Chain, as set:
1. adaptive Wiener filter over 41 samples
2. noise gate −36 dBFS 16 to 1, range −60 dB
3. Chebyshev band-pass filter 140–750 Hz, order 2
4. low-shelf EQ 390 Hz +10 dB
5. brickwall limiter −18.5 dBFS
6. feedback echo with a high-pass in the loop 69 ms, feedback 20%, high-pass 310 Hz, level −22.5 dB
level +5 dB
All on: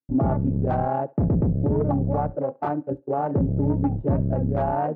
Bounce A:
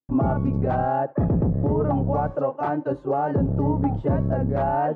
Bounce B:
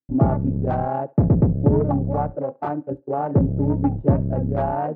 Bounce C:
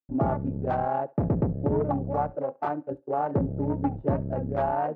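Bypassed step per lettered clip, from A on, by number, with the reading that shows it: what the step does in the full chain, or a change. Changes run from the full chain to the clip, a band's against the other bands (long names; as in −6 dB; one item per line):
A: 1, 2 kHz band +4.5 dB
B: 5, change in crest factor +7.5 dB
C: 4, 125 Hz band −5.0 dB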